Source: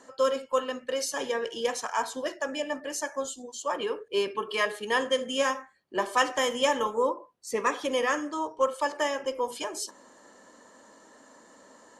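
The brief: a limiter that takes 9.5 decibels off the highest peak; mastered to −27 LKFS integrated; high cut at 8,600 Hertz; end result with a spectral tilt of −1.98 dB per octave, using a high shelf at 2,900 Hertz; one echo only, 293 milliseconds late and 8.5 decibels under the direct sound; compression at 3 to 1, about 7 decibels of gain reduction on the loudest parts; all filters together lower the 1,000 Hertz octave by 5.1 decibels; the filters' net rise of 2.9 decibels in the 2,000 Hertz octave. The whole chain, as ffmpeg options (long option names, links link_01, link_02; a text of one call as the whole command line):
ffmpeg -i in.wav -af "lowpass=8600,equalizer=frequency=1000:width_type=o:gain=-7,equalizer=frequency=2000:width_type=o:gain=8,highshelf=frequency=2900:gain=-7.5,acompressor=threshold=-30dB:ratio=3,alimiter=level_in=4dB:limit=-24dB:level=0:latency=1,volume=-4dB,aecho=1:1:293:0.376,volume=10.5dB" out.wav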